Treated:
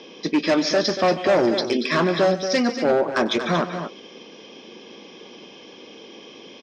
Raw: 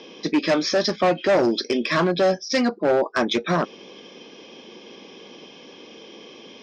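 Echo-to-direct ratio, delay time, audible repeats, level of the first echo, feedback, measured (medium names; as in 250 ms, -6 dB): -7.5 dB, 96 ms, 3, -19.0 dB, no regular repeats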